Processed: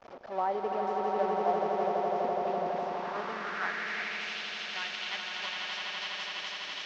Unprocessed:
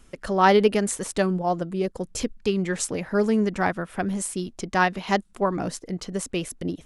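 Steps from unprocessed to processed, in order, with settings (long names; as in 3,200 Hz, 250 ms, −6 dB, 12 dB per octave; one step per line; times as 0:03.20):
linear delta modulator 32 kbit/s, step −18.5 dBFS
downward expander −19 dBFS
downward compressor 4 to 1, threshold −21 dBFS, peak gain reduction 8 dB
echo that builds up and dies away 83 ms, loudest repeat 8, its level −6 dB
band-pass filter sweep 690 Hz → 2,900 Hz, 0:02.74–0:04.40
level −2 dB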